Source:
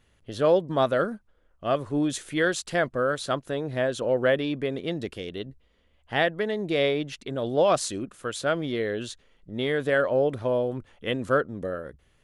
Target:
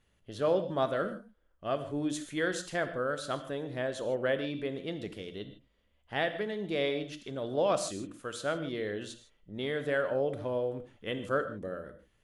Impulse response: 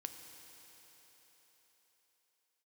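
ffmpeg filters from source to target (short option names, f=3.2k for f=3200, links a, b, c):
-filter_complex "[1:a]atrim=start_sample=2205,afade=t=out:st=0.15:d=0.01,atrim=end_sample=7056,asetrate=27783,aresample=44100[a];[0:a][a]afir=irnorm=-1:irlink=0,volume=-5.5dB"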